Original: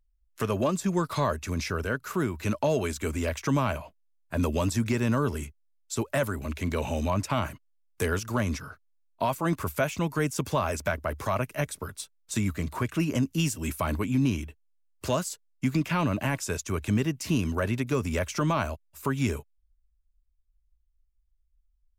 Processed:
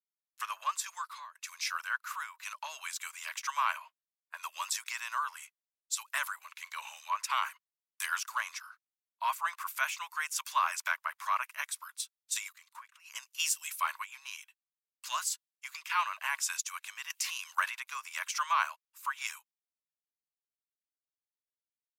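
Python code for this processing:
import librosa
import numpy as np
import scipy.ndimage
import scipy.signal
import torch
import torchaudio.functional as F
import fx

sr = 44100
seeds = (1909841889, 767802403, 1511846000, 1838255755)

y = fx.level_steps(x, sr, step_db=19, at=(12.48, 13.04), fade=0.02)
y = fx.band_squash(y, sr, depth_pct=100, at=(17.1, 17.7))
y = fx.edit(y, sr, fx.fade_out_to(start_s=0.87, length_s=0.48, floor_db=-23.5), tone=tone)
y = scipy.signal.sosfilt(scipy.signal.ellip(4, 1.0, 70, 1000.0, 'highpass', fs=sr, output='sos'), y)
y = fx.band_widen(y, sr, depth_pct=70)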